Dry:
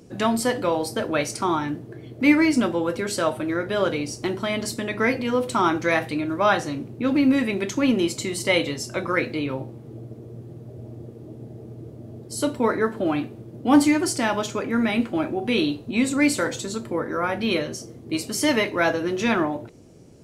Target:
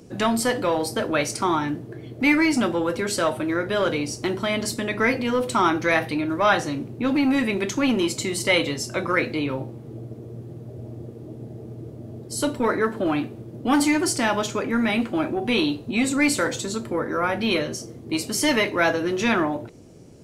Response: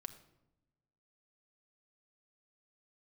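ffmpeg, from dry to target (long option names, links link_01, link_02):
-filter_complex "[0:a]asettb=1/sr,asplit=3[link_01][link_02][link_03];[link_01]atrim=end=5.704[link_04];[link_02]atrim=start=5.7:end=6.3,asetpts=PTS-STARTPTS,afade=type=in:duration=0.004:curve=qsin,afade=type=out:start_time=0.596:duration=0.004:curve=qsin,equalizer=frequency=7500:width=5.9:gain=-10.5[link_05];[link_03]atrim=start=6.296[link_06];[link_04][link_05]acrossfade=duration=0.004:curve1=hsin:curve2=qsin[link_07];[link_07][link_06]acrossfade=duration=0.004:curve1=qsin:curve2=hsin,acrossover=split=1000[link_08][link_09];[link_08]asoftclip=type=tanh:threshold=-18.5dB[link_10];[link_10][link_09]amix=inputs=2:normalize=0,volume=2dB"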